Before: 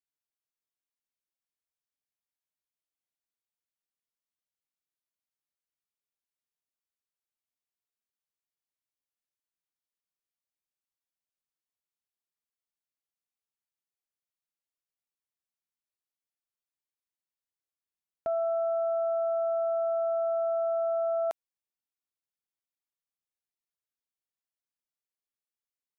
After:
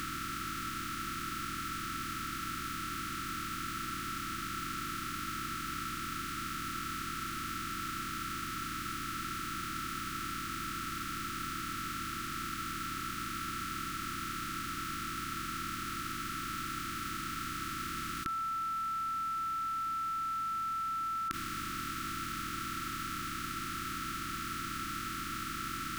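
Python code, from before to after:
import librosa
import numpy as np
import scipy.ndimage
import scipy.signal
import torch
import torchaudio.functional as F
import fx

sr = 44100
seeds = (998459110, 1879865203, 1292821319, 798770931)

p1 = fx.bin_compress(x, sr, power=0.2)
p2 = fx.over_compress(p1, sr, threshold_db=-43.0, ratio=-1.0)
p3 = p1 + (p2 * 10.0 ** (1.0 / 20.0))
p4 = fx.brickwall_bandstop(p3, sr, low_hz=360.0, high_hz=1100.0)
y = p4 * 10.0 ** (8.5 / 20.0)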